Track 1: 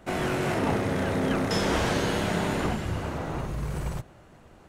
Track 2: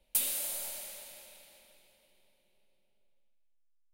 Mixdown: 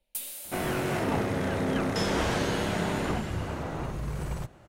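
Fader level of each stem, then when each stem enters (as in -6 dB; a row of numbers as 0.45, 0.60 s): -2.0, -6.0 dB; 0.45, 0.00 s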